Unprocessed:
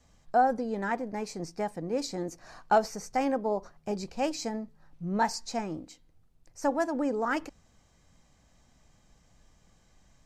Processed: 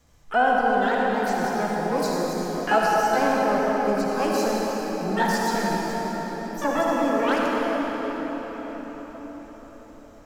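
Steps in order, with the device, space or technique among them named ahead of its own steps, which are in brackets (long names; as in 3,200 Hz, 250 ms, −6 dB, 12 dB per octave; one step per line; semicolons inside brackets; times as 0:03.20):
shimmer-style reverb (pitch-shifted copies added +12 semitones −7 dB; convolution reverb RT60 6.0 s, pre-delay 50 ms, DRR −4 dB)
level +1.5 dB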